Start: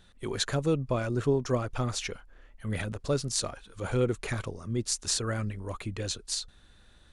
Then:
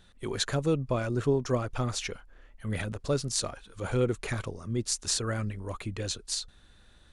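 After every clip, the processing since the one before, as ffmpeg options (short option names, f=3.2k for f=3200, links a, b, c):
-af anull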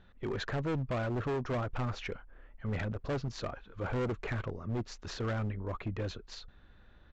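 -af "lowpass=2.1k,aresample=16000,asoftclip=type=hard:threshold=-30dB,aresample=44100"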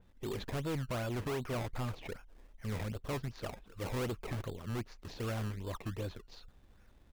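-filter_complex "[0:a]acrossover=split=2200[a][b];[a]acrusher=samples=21:mix=1:aa=0.000001:lfo=1:lforange=21:lforate=2.6[c];[b]adynamicsmooth=sensitivity=7.5:basefreq=3.8k[d];[c][d]amix=inputs=2:normalize=0,adynamicequalizer=threshold=0.002:dfrequency=3300:dqfactor=0.7:tfrequency=3300:tqfactor=0.7:attack=5:release=100:ratio=0.375:range=2:mode=cutabove:tftype=highshelf,volume=-3dB"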